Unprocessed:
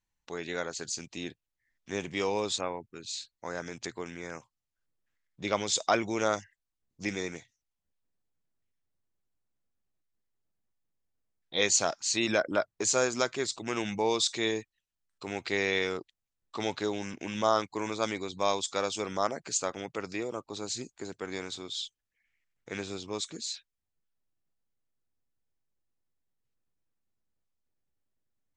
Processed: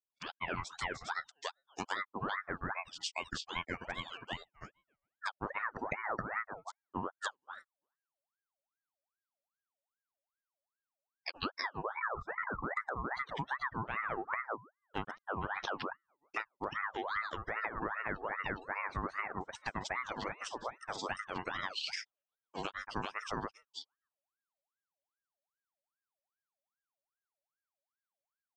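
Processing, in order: peak limiter -20 dBFS, peak gain reduction 9.5 dB; low-pass that closes with the level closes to 430 Hz, closed at -27.5 dBFS; spectral noise reduction 27 dB; de-hum 145.1 Hz, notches 17; granulator 121 ms, grains 15 per s, spray 349 ms; compression 4:1, threshold -44 dBFS, peak gain reduction 12 dB; ring modulator with a swept carrier 1.1 kHz, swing 50%, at 2.5 Hz; trim +11.5 dB

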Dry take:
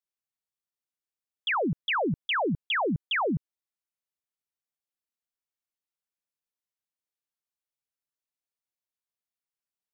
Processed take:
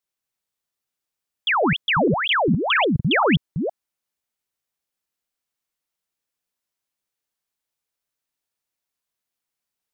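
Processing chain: chunks repeated in reverse 231 ms, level -4 dB; 2.95–3.36 s: peaking EQ 130 Hz +5.5 dB 1.7 oct; trim +7 dB

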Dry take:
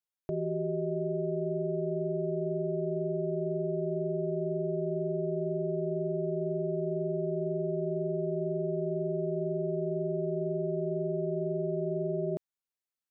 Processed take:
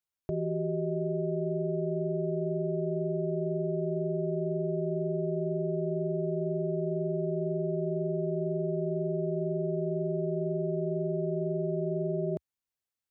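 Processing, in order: peaking EQ 75 Hz +8.5 dB 1.4 oct

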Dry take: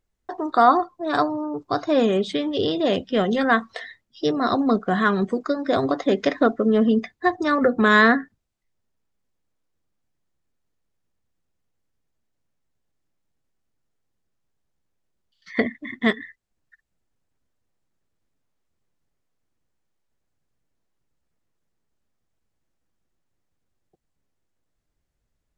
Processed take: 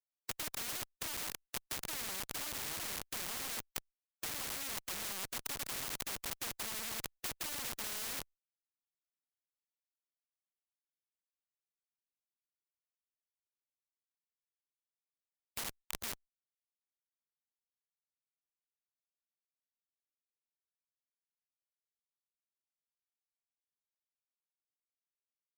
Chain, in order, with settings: Schmitt trigger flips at -24.5 dBFS; peaking EQ 1 kHz +6.5 dB 0.77 oct; integer overflow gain 28.5 dB; transient shaper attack +3 dB, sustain -6 dB; spectrum-flattening compressor 4:1; trim +9.5 dB

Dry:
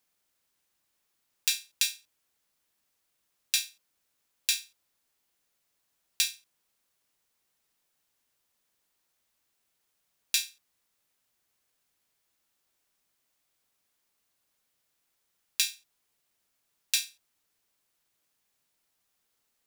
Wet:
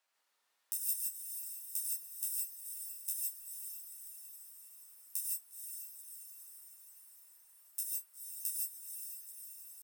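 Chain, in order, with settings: pitch shift +9 st; in parallel at 0 dB: compressor with a negative ratio -30 dBFS; on the sum: speed mistake 7.5 ips tape played at 15 ips; high-pass 950 Hz 12 dB/octave; tilt EQ -3.5 dB/octave; on a send: echo that smears into a reverb 481 ms, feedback 63%, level -7 dB; on the sum: gated-style reverb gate 180 ms rising, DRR -2 dB; trim +1 dB

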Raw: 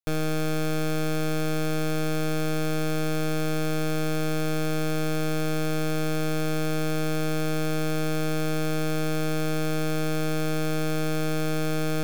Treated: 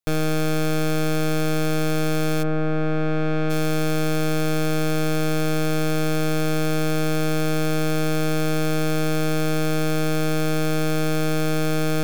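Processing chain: 2.42–3.49 s: low-pass 1.6 kHz -> 2.7 kHz 12 dB/octave; trim +4.5 dB

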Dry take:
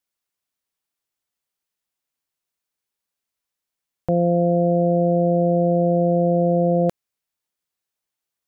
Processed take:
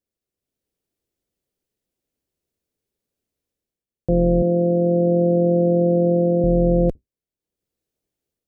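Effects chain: octave divider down 2 oct, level -3 dB; 4.42–6.44 s: elliptic band-pass 180–1100 Hz, stop band 40 dB; resonant low shelf 660 Hz +12.5 dB, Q 1.5; level rider gain up to 6 dB; trim -7.5 dB

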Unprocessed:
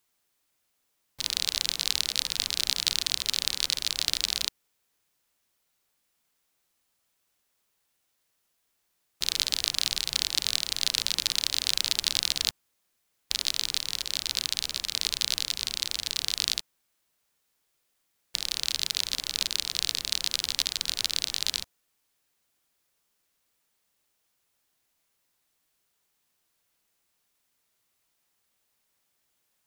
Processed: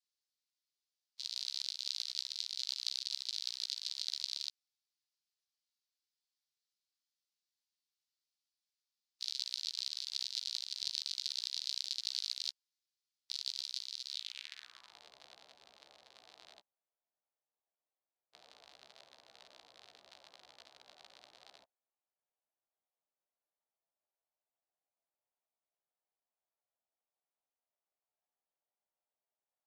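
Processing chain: short-time spectra conjugated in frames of 30 ms; band-pass sweep 4.6 kHz -> 680 Hz, 14.09–15.06 s; trim -6 dB

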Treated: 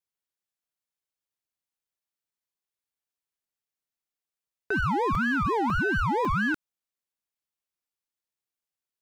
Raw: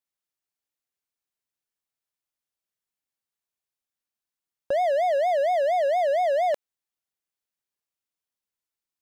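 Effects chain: crackling interface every 0.55 s, samples 128, zero, from 0.75 s; ring modulator with a swept carrier 590 Hz, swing 65%, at 1.7 Hz

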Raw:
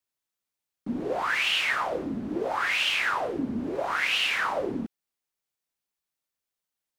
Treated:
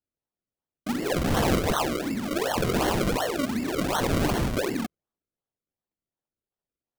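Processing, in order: level-controlled noise filter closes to 1 kHz, open at -26.5 dBFS; in parallel at -5 dB: saturation -31 dBFS, distortion -8 dB; 1.10–1.54 s: on the sum: flutter echo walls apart 9.1 m, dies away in 0.55 s; decimation with a swept rate 35×, swing 100% 2.7 Hz

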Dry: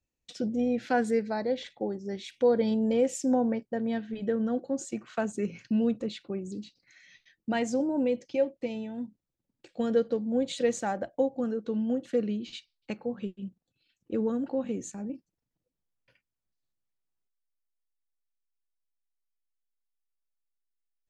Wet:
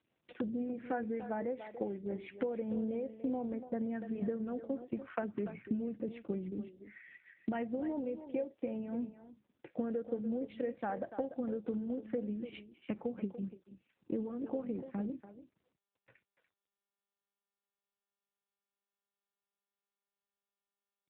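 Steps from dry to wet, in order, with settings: low-pass 2.3 kHz 24 dB/octave; compression 8:1, threshold -38 dBFS, peak gain reduction 18.5 dB; speakerphone echo 290 ms, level -10 dB; trim +5 dB; AMR-NB 7.4 kbps 8 kHz

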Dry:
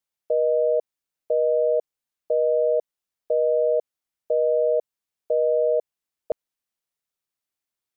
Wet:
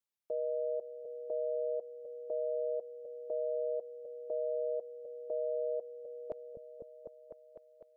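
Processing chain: delay with an opening low-pass 251 ms, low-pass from 200 Hz, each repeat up 1 oct, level -6 dB; peak limiter -21 dBFS, peak gain reduction 7.5 dB; band-stop 750 Hz, Q 12; trim -7.5 dB

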